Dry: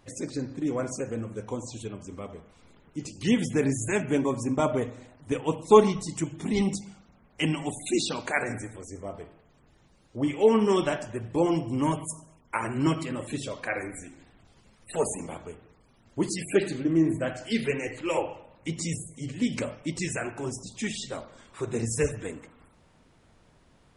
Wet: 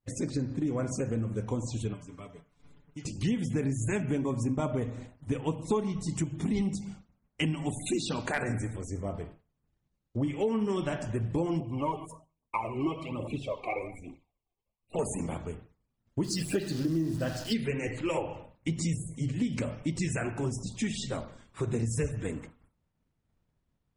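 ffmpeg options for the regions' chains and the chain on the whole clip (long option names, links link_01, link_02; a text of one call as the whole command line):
ffmpeg -i in.wav -filter_complex "[0:a]asettb=1/sr,asplit=3[link_01][link_02][link_03];[link_01]atrim=end=1.934[link_04];[link_02]atrim=start=1.93:end=3.05,asetpts=PTS-STARTPTS,afade=type=in:duration=0.004:curve=qsin,afade=type=out:start_time=1.116:duration=0.004:curve=qsin,aecho=1:1:6.9:0.81,atrim=end_sample=49392,acrossover=split=820|2400[link_05][link_06][link_07];[link_05]acompressor=threshold=-49dB:ratio=4[link_08];[link_06]acompressor=threshold=-52dB:ratio=4[link_09];[link_07]acompressor=threshold=-55dB:ratio=4[link_10];[link_08][link_09][link_10]amix=inputs=3:normalize=0[link_11];[link_03]atrim=start=3.046[link_12];[link_04][link_11]acrossfade=duration=0.004:curve1=hsin:curve2=qsin[link_13];[link_13][link_12]acrossfade=duration=0.004:curve1=qsin:curve2=hsin,asettb=1/sr,asplit=3[link_14][link_15][link_16];[link_14]atrim=end=7.814[link_17];[link_15]atrim=start=7.81:end=8.54,asetpts=PTS-STARTPTS,afade=type=in:duration=0.004:curve=qsin,afade=type=out:start_time=0.726:duration=0.004:curve=qsin,bandreject=frequency=2200:width=15,asoftclip=type=hard:threshold=-17dB[link_18];[link_16]atrim=start=8.536[link_19];[link_17][link_18]acrossfade=duration=0.004:curve1=hsin:curve2=qsin[link_20];[link_20][link_19]acrossfade=duration=0.004:curve1=qsin:curve2=hsin,asettb=1/sr,asplit=3[link_21][link_22][link_23];[link_21]atrim=end=11.604[link_24];[link_22]atrim=start=11.6:end=14.99,asetpts=PTS-STARTPTS,afade=type=in:duration=0.004:curve=qsin,afade=type=out:start_time=3.386:duration=0.004:curve=qsin,asuperstop=centerf=1600:order=12:qfactor=1.7,acrossover=split=360 3000:gain=0.251 1 0.112[link_25][link_26][link_27];[link_25][link_26][link_27]amix=inputs=3:normalize=0,aphaser=in_gain=1:out_gain=1:delay=2.9:decay=0.58:speed=1.2:type=triangular[link_28];[link_23]atrim=start=14.986[link_29];[link_24][link_28]acrossfade=duration=0.004:curve1=hsin:curve2=qsin[link_30];[link_30][link_29]acrossfade=duration=0.004:curve1=qsin:curve2=hsin,asettb=1/sr,asplit=3[link_31][link_32][link_33];[link_31]atrim=end=16.244[link_34];[link_32]atrim=start=16.24:end=17.54,asetpts=PTS-STARTPTS,afade=type=in:duration=0.004:curve=qsin,afade=type=out:start_time=1.296:duration=0.004:curve=qsin,acrusher=bits=8:dc=4:mix=0:aa=0.000001,equalizer=frequency=4900:width_type=o:width=0.73:gain=10,bandreject=frequency=2200:width=6.4[link_35];[link_33]atrim=start=17.536[link_36];[link_34][link_35]acrossfade=duration=0.004:curve1=hsin:curve2=qsin[link_37];[link_37][link_36]acrossfade=duration=0.004:curve1=qsin:curve2=hsin,agate=range=-33dB:threshold=-45dB:ratio=3:detection=peak,bass=frequency=250:gain=9,treble=frequency=4000:gain=-1,acompressor=threshold=-27dB:ratio=5" out.wav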